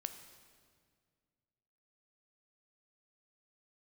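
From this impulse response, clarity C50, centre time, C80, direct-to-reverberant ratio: 9.5 dB, 19 ms, 10.5 dB, 8.0 dB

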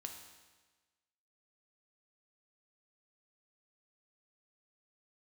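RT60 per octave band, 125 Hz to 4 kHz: 1.3 s, 1.3 s, 1.3 s, 1.3 s, 1.3 s, 1.3 s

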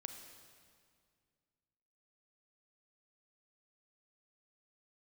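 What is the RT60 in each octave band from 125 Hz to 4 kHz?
2.8 s, 2.5 s, 2.2 s, 2.0 s, 1.9 s, 1.8 s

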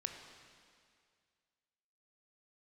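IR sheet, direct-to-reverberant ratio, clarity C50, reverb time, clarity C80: 4.0 dB, 5.5 dB, 2.1 s, 6.5 dB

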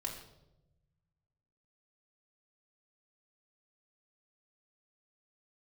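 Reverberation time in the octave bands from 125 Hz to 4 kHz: 2.2 s, 1.4 s, 1.1 s, 0.75 s, 0.60 s, 0.65 s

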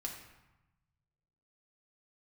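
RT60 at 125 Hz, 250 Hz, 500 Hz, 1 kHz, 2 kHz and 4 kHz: 2.0 s, 1.3 s, 0.90 s, 1.1 s, 0.95 s, 0.70 s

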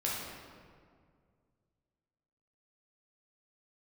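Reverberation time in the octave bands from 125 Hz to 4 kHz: 2.9 s, 2.4 s, 2.2 s, 1.9 s, 1.5 s, 1.2 s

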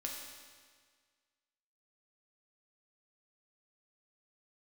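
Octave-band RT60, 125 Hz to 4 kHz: 1.7 s, 1.7 s, 1.7 s, 1.7 s, 1.7 s, 1.6 s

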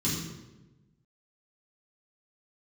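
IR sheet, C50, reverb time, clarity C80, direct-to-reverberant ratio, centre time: 2.0 dB, 1.1 s, 4.0 dB, -9.5 dB, 61 ms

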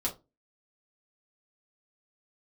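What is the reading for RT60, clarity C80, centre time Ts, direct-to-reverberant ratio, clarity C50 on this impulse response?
0.25 s, 22.0 dB, 14 ms, -4.0 dB, 13.0 dB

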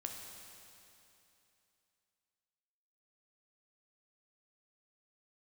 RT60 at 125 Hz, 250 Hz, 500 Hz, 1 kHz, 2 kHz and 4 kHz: 2.9 s, 2.9 s, 2.9 s, 2.9 s, 2.9 s, 2.9 s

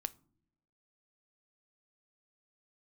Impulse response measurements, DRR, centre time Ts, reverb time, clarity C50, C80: 14.0 dB, 2 ms, no single decay rate, 23.0 dB, 28.0 dB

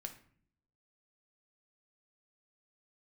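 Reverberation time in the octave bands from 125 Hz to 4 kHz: 0.95 s, 0.90 s, 0.60 s, 0.50 s, 0.50 s, 0.35 s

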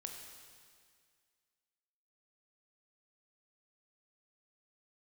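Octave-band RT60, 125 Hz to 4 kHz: 2.0 s, 2.0 s, 2.0 s, 2.0 s, 2.0 s, 2.0 s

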